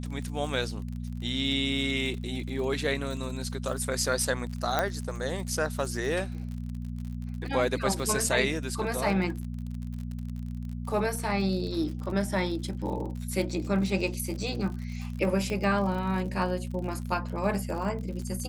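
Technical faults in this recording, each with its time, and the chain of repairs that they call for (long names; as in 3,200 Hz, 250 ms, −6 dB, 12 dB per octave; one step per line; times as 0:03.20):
surface crackle 52 per second −36 dBFS
mains hum 60 Hz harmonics 4 −35 dBFS
0:04.79: click −11 dBFS
0:15.50: click −21 dBFS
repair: click removal
hum removal 60 Hz, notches 4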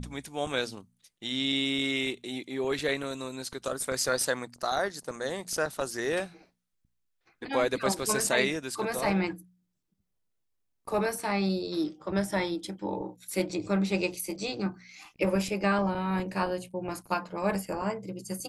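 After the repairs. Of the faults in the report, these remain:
0:04.79: click
0:15.50: click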